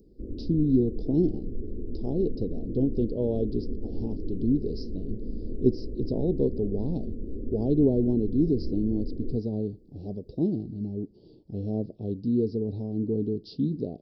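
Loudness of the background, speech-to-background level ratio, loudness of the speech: -38.0 LUFS, 9.5 dB, -28.5 LUFS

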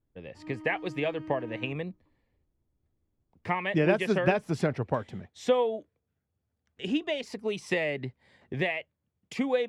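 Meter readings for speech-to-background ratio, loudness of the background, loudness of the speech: 14.5 dB, -44.5 LUFS, -30.0 LUFS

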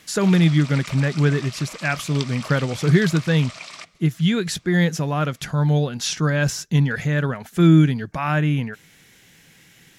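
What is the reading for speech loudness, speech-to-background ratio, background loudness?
-20.5 LUFS, 15.5 dB, -36.0 LUFS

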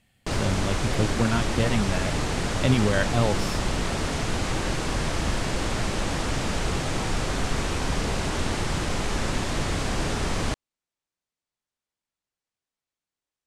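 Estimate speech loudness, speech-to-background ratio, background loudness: -27.0 LUFS, 0.5 dB, -27.5 LUFS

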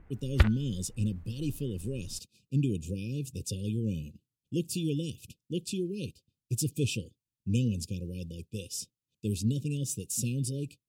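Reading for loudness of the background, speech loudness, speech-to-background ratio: -29.0 LUFS, -33.5 LUFS, -4.5 dB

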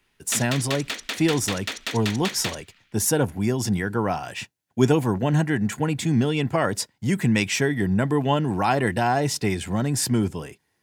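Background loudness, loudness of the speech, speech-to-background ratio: -30.5 LUFS, -23.5 LUFS, 7.0 dB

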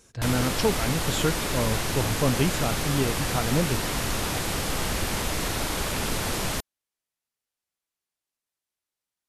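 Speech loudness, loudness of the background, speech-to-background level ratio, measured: -28.0 LUFS, -27.5 LUFS, -0.5 dB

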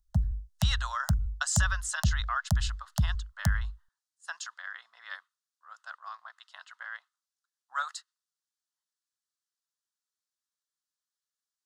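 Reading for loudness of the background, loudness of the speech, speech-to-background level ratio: -32.5 LUFS, -36.0 LUFS, -3.5 dB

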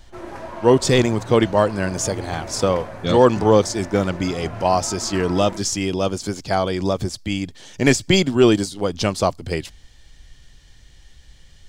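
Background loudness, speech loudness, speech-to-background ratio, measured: -34.5 LUFS, -20.0 LUFS, 14.5 dB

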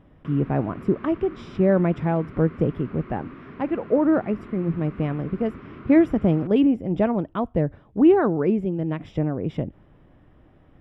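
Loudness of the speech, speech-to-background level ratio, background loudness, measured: -23.0 LUFS, 19.5 dB, -42.5 LUFS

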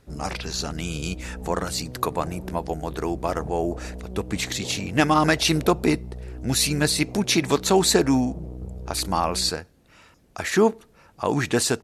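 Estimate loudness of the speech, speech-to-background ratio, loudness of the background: -24.0 LUFS, 14.0 dB, -38.0 LUFS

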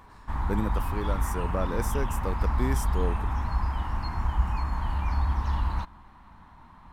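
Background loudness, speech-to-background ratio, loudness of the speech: -30.0 LUFS, -4.0 dB, -34.0 LUFS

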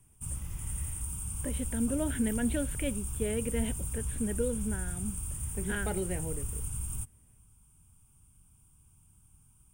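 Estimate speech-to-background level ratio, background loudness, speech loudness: 1.0 dB, -36.5 LUFS, -35.5 LUFS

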